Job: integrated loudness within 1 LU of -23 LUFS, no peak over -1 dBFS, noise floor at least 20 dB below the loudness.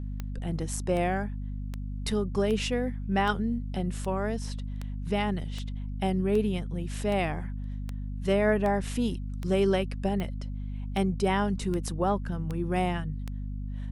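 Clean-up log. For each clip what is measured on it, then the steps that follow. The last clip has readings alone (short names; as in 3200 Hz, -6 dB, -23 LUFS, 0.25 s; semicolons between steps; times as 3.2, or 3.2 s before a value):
clicks 18; hum 50 Hz; harmonics up to 250 Hz; hum level -32 dBFS; loudness -30.0 LUFS; peak -12.0 dBFS; loudness target -23.0 LUFS
-> de-click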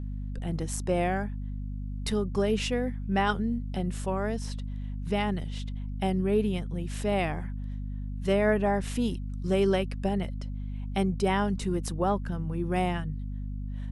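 clicks 0; hum 50 Hz; harmonics up to 250 Hz; hum level -32 dBFS
-> de-hum 50 Hz, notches 5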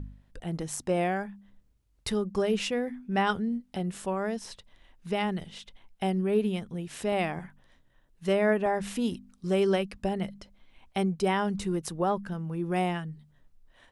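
hum none; loudness -30.0 LUFS; peak -13.5 dBFS; loudness target -23.0 LUFS
-> gain +7 dB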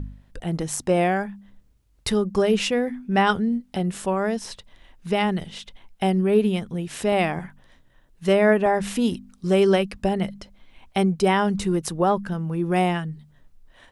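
loudness -23.0 LUFS; peak -6.5 dBFS; noise floor -59 dBFS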